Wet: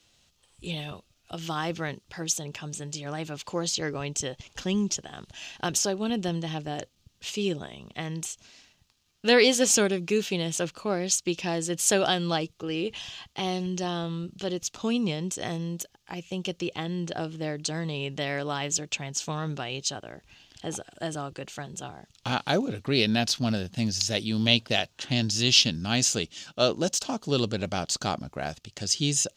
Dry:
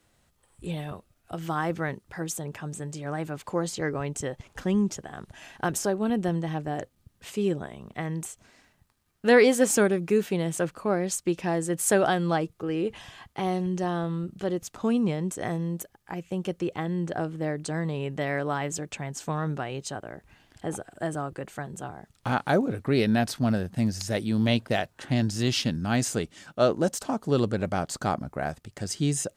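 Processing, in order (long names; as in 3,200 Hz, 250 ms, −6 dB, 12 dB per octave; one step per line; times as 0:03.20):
flat-topped bell 4,200 Hz +12.5 dB
level −2.5 dB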